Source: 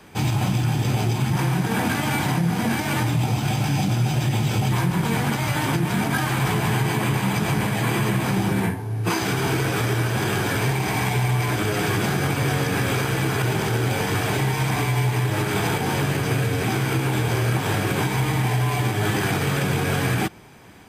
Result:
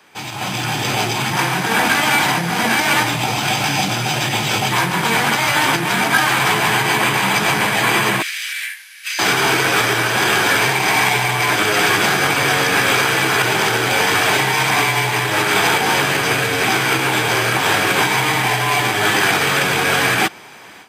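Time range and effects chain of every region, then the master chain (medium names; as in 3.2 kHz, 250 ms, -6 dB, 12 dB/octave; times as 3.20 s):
8.22–9.19 s: steep high-pass 1.8 kHz + compression 5:1, threshold -32 dBFS + loudspeaker Doppler distortion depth 0.26 ms
whole clip: high-pass 1.1 kHz 6 dB/octave; peaking EQ 12 kHz -6 dB 1.3 oct; level rider gain up to 11.5 dB; trim +2.5 dB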